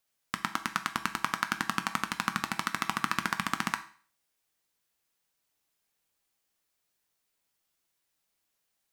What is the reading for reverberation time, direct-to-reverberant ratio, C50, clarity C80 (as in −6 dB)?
0.45 s, 7.5 dB, 14.0 dB, 18.5 dB